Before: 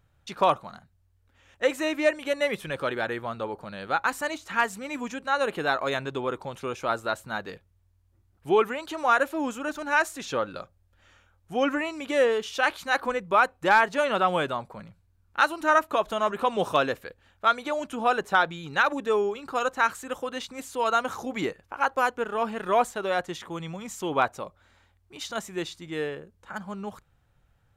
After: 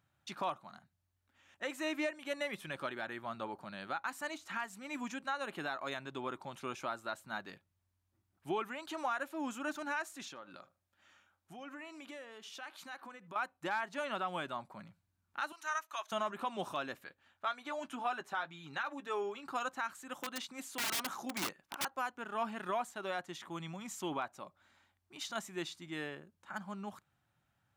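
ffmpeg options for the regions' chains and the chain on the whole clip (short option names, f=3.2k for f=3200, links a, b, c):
-filter_complex "[0:a]asettb=1/sr,asplit=3[a][b][c];[a]atrim=end=10.284[d];[b]atrim=start=10.28:end=13.36,asetpts=PTS-STARTPTS,afade=t=in:d=0.004:c=qsin,afade=t=out:st=3.076:d=0.004:c=qsin,lowshelf=f=99:g=-11,acompressor=threshold=-42dB:ratio=3:attack=3.2:release=140:knee=1:detection=peak,asplit=2[e][f];[f]adelay=77,lowpass=f=1.9k:p=1,volume=-19dB,asplit=2[g][h];[h]adelay=77,lowpass=f=1.9k:p=1,volume=0.21[i];[e][g][i]amix=inputs=3:normalize=0,atrim=end_sample=135828[j];[c]atrim=start=13.356[k];[d][j]acrossfade=d=0.004:c1=hsin:c2=qsin[l];[l][k]acrossfade=d=0.004:c1=qsin:c2=hsin,asettb=1/sr,asplit=3[m][n][o];[m]atrim=end=15.524[p];[n]atrim=start=15.52:end=16.12,asetpts=PTS-STARTPTS,afade=t=in:d=0.004:c=qsin,afade=t=out:st=0.596:d=0.004:c=qsin,highpass=1.2k,equalizer=f=6.2k:w=6.8:g=12.5[q];[o]atrim=start=16.116[r];[p][q]acrossfade=d=0.004:c1=hsin:c2=qsin[s];[s][r]acrossfade=d=0.004:c1=qsin:c2=hsin,asettb=1/sr,asplit=3[t][u][v];[t]atrim=end=17.054[w];[u]atrim=start=17.05:end=19.47,asetpts=PTS-STARTPTS,afade=t=in:d=0.004:c=qsin,afade=t=out:st=2.416:d=0.004:c=qsin,equalizer=f=1.5k:w=0.36:g=4,flanger=delay=6.6:depth=1.4:regen=-40:speed=2:shape=triangular[x];[v]atrim=start=19.466[y];[w][x]acrossfade=d=0.004:c1=hsin:c2=qsin[z];[z][y]acrossfade=d=0.004:c1=qsin:c2=hsin,asettb=1/sr,asplit=3[aa][ab][ac];[aa]atrim=end=20.154[ad];[ab]atrim=start=20.15:end=21.85,asetpts=PTS-STARTPTS,afade=t=in:d=0.004:c=qsin,afade=t=out:st=1.696:d=0.004:c=qsin,equalizer=f=91:t=o:w=0.58:g=-13,aeval=exprs='(mod(14.1*val(0)+1,2)-1)/14.1':c=same[ae];[ac]atrim=start=21.846[af];[ad][ae]acrossfade=d=0.004:c1=hsin:c2=qsin[ag];[ag][af]acrossfade=d=0.004:c1=qsin:c2=hsin,highpass=150,equalizer=f=470:w=4.3:g=-13,alimiter=limit=-20dB:level=0:latency=1:release=385,volume=-6dB"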